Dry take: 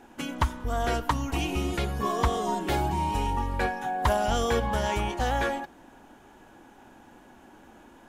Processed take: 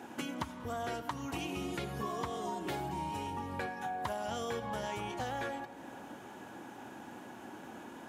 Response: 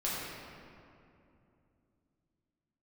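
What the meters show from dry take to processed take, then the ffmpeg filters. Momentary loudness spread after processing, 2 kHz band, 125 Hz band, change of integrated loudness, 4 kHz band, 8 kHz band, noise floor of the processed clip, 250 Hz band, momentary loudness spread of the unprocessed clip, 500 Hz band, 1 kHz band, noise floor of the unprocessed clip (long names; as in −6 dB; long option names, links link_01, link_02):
11 LU, −9.5 dB, −13.5 dB, −11.5 dB, −9.5 dB, −9.5 dB, −50 dBFS, −8.0 dB, 4 LU, −10.0 dB, −10.0 dB, −54 dBFS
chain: -filter_complex "[0:a]highpass=frequency=98:width=0.5412,highpass=frequency=98:width=1.3066,acompressor=threshold=-42dB:ratio=4,asplit=2[link_01][link_02];[1:a]atrim=start_sample=2205,adelay=79[link_03];[link_02][link_03]afir=irnorm=-1:irlink=0,volume=-20dB[link_04];[link_01][link_04]amix=inputs=2:normalize=0,volume=4dB"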